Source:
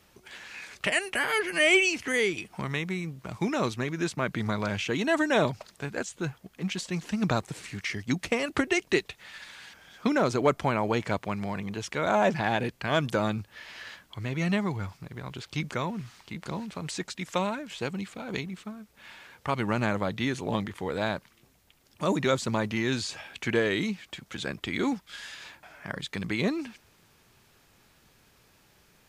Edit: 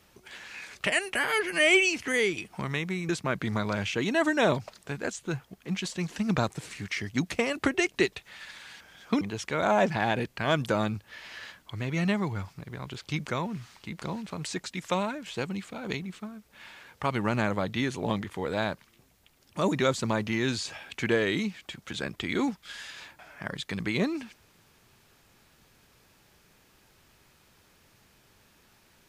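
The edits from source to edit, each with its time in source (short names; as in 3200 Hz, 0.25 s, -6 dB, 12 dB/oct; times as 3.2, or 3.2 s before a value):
3.09–4.02 cut
10.14–11.65 cut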